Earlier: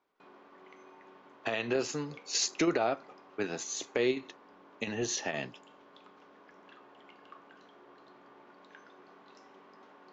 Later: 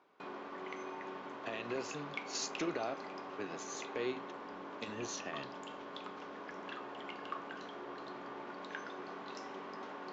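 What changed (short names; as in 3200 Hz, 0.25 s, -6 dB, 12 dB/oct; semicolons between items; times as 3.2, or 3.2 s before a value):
speech -9.5 dB; background +10.5 dB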